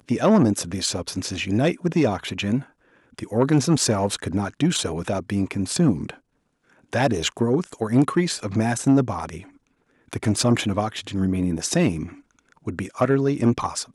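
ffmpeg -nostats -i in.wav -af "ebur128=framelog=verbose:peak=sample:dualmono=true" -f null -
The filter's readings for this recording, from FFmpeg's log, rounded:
Integrated loudness:
  I:         -19.5 LUFS
  Threshold: -30.2 LUFS
Loudness range:
  LRA:         1.9 LU
  Threshold: -40.5 LUFS
  LRA low:   -21.6 LUFS
  LRA high:  -19.8 LUFS
Sample peak:
  Peak:       -5.4 dBFS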